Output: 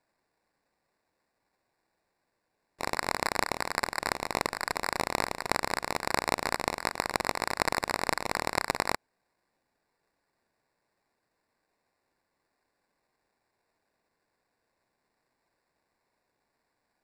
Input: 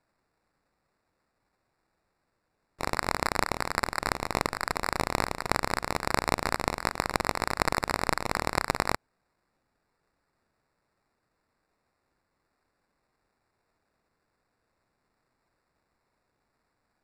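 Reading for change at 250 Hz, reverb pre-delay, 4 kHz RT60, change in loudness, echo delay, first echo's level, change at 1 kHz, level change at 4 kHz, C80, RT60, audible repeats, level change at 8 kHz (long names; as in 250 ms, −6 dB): −3.5 dB, no reverb audible, no reverb audible, −1.5 dB, no echo audible, no echo audible, −1.5 dB, 0.0 dB, no reverb audible, no reverb audible, no echo audible, 0.0 dB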